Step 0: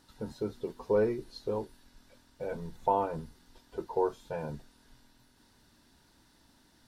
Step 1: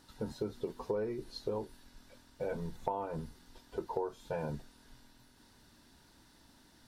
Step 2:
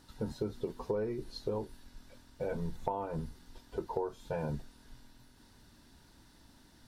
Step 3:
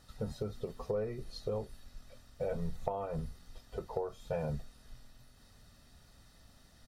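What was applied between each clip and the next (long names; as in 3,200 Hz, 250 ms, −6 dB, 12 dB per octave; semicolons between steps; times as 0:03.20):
downward compressor 10 to 1, threshold −33 dBFS, peak gain reduction 12 dB; level +1.5 dB
low-shelf EQ 170 Hz +6 dB
comb filter 1.6 ms, depth 61%; level −1.5 dB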